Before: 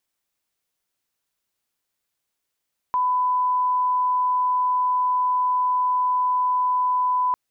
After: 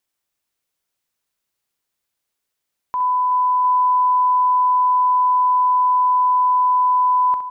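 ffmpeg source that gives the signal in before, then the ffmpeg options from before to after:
-f lavfi -i "sine=frequency=1000:duration=4.4:sample_rate=44100,volume=0.06dB"
-af "aecho=1:1:41|65|375|705:0.106|0.316|0.2|0.251"

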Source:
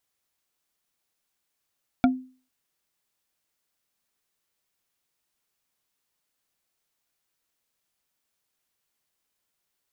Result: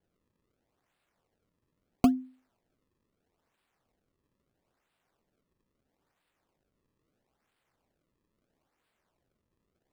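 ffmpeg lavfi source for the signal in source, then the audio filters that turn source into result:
-f lavfi -i "aevalsrc='0.224*pow(10,-3*t/0.39)*sin(2*PI*257*t)+0.141*pow(10,-3*t/0.115)*sin(2*PI*708.5*t)+0.0891*pow(10,-3*t/0.051)*sin(2*PI*1388.8*t)+0.0562*pow(10,-3*t/0.028)*sin(2*PI*2295.8*t)+0.0355*pow(10,-3*t/0.017)*sin(2*PI*3428.4*t)':duration=0.45:sample_rate=44100"
-filter_complex "[0:a]acrossover=split=350|730[link_01][link_02][link_03];[link_03]acrusher=samples=34:mix=1:aa=0.000001:lfo=1:lforange=54.4:lforate=0.76[link_04];[link_01][link_02][link_04]amix=inputs=3:normalize=0"

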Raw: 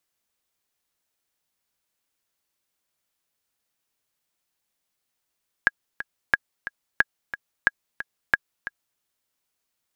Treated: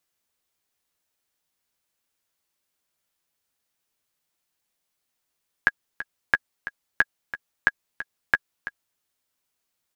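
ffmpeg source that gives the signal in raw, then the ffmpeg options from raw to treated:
-f lavfi -i "aevalsrc='pow(10,(-3.5-13.5*gte(mod(t,2*60/180),60/180))/20)*sin(2*PI*1650*mod(t,60/180))*exp(-6.91*mod(t,60/180)/0.03)':duration=3.33:sample_rate=44100"
-filter_complex "[0:a]asplit=2[link_01][link_02];[link_02]adelay=12,volume=-10dB[link_03];[link_01][link_03]amix=inputs=2:normalize=0"

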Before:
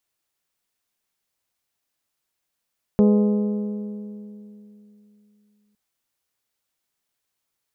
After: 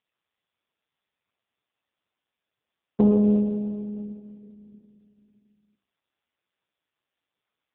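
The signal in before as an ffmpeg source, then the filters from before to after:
-f lavfi -i "aevalsrc='0.251*pow(10,-3*t/3.13)*sin(2*PI*208*t)+0.126*pow(10,-3*t/2.542)*sin(2*PI*416*t)+0.0631*pow(10,-3*t/2.407)*sin(2*PI*499.2*t)+0.0316*pow(10,-3*t/2.251)*sin(2*PI*624*t)+0.0158*pow(10,-3*t/2.065)*sin(2*PI*832*t)+0.00794*pow(10,-3*t/1.931)*sin(2*PI*1040*t)+0.00398*pow(10,-3*t/1.829)*sin(2*PI*1248*t)':duration=2.76:sample_rate=44100"
-af "bandreject=frequency=50:width_type=h:width=6,bandreject=frequency=100:width_type=h:width=6,bandreject=frequency=150:width_type=h:width=6,bandreject=frequency=200:width_type=h:width=6,bandreject=frequency=250:width_type=h:width=6,bandreject=frequency=300:width_type=h:width=6,bandreject=frequency=350:width_type=h:width=6,aphaser=in_gain=1:out_gain=1:delay=3.7:decay=0.24:speed=1.5:type=sinusoidal" -ar 8000 -c:a libopencore_amrnb -b:a 5150

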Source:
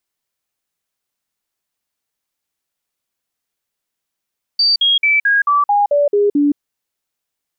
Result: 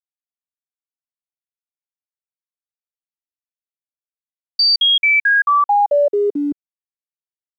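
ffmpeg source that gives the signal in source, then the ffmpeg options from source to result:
-f lavfi -i "aevalsrc='0.316*clip(min(mod(t,0.22),0.17-mod(t,0.22))/0.005,0,1)*sin(2*PI*4630*pow(2,-floor(t/0.22)/2)*mod(t,0.22))':duration=1.98:sample_rate=44100"
-filter_complex "[0:a]acrossover=split=150|440|990[link_01][link_02][link_03][link_04];[link_02]alimiter=limit=-20.5dB:level=0:latency=1[link_05];[link_01][link_05][link_03][link_04]amix=inputs=4:normalize=0,aeval=exprs='sgn(val(0))*max(abs(val(0))-0.00251,0)':channel_layout=same"

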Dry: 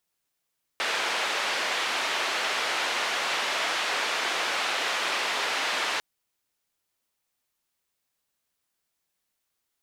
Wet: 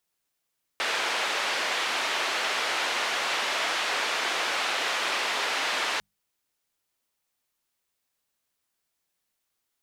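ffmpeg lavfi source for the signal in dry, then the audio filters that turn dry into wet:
-f lavfi -i "anoisesrc=color=white:duration=5.2:sample_rate=44100:seed=1,highpass=frequency=510,lowpass=frequency=3000,volume=-14.1dB"
-af "bandreject=frequency=50:width_type=h:width=6,bandreject=frequency=100:width_type=h:width=6,bandreject=frequency=150:width_type=h:width=6,bandreject=frequency=200:width_type=h:width=6"

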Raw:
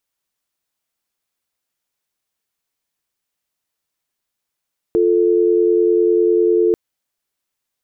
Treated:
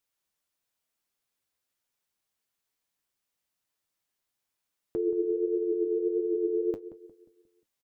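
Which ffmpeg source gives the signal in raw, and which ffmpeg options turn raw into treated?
-f lavfi -i "aevalsrc='0.2*(sin(2*PI*350*t)+sin(2*PI*440*t))':duration=1.79:sample_rate=44100"
-filter_complex "[0:a]alimiter=limit=-17dB:level=0:latency=1:release=332,flanger=delay=7:depth=7.2:regen=56:speed=1.6:shape=triangular,asplit=2[link_01][link_02];[link_02]adelay=178,lowpass=frequency=830:poles=1,volume=-12.5dB,asplit=2[link_03][link_04];[link_04]adelay=178,lowpass=frequency=830:poles=1,volume=0.47,asplit=2[link_05][link_06];[link_06]adelay=178,lowpass=frequency=830:poles=1,volume=0.47,asplit=2[link_07][link_08];[link_08]adelay=178,lowpass=frequency=830:poles=1,volume=0.47,asplit=2[link_09][link_10];[link_10]adelay=178,lowpass=frequency=830:poles=1,volume=0.47[link_11];[link_01][link_03][link_05][link_07][link_09][link_11]amix=inputs=6:normalize=0"

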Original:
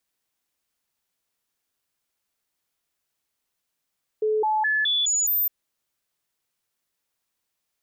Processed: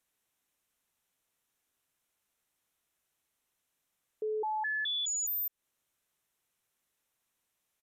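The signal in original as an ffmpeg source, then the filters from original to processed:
-f lavfi -i "aevalsrc='0.106*clip(min(mod(t,0.21),0.21-mod(t,0.21))/0.005,0,1)*sin(2*PI*431*pow(2,floor(t/0.21)/1)*mod(t,0.21))':duration=1.26:sample_rate=44100"
-af "equalizer=frequency=4700:width=5:gain=-8.5,alimiter=level_in=6dB:limit=-24dB:level=0:latency=1:release=193,volume=-6dB,aresample=32000,aresample=44100"

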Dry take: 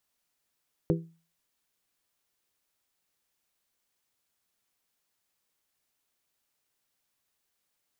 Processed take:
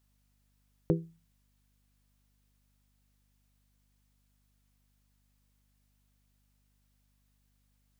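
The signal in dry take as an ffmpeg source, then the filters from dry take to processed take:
-f lavfi -i "aevalsrc='0.0841*pow(10,-3*t/0.37)*sin(2*PI*165*t)+0.0708*pow(10,-3*t/0.228)*sin(2*PI*330*t)+0.0596*pow(10,-3*t/0.2)*sin(2*PI*396*t)+0.0501*pow(10,-3*t/0.171)*sin(2*PI*495*t)':duration=0.89:sample_rate=44100"
-af "aeval=exprs='val(0)+0.000282*(sin(2*PI*50*n/s)+sin(2*PI*2*50*n/s)/2+sin(2*PI*3*50*n/s)/3+sin(2*PI*4*50*n/s)/4+sin(2*PI*5*50*n/s)/5)':channel_layout=same"

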